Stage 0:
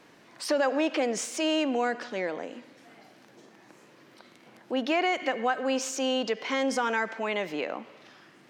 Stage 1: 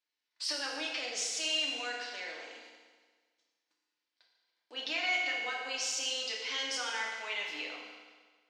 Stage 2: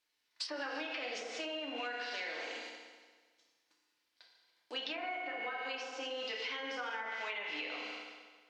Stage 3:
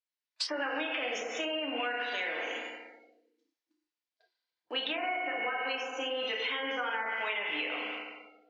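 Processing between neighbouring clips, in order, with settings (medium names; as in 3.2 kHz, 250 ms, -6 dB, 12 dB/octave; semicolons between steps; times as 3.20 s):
gate -49 dBFS, range -27 dB; band-pass filter 4.3 kHz, Q 1.4; FDN reverb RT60 1.5 s, low-frequency decay 0.9×, high-frequency decay 0.9×, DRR -3 dB
low-pass that closes with the level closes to 1.2 kHz, closed at -30.5 dBFS; compression, threshold -44 dBFS, peak gain reduction 9.5 dB; trim +7 dB
spectral noise reduction 23 dB; trim +6.5 dB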